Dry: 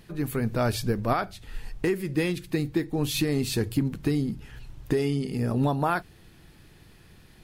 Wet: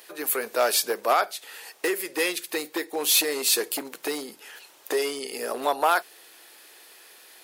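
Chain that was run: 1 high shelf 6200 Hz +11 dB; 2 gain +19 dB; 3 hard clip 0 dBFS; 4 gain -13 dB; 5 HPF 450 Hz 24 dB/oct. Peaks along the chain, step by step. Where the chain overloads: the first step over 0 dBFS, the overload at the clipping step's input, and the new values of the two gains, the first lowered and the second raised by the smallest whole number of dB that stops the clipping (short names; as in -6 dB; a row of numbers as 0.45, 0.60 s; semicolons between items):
-12.0, +7.0, 0.0, -13.0, -8.0 dBFS; step 2, 7.0 dB; step 2 +12 dB, step 4 -6 dB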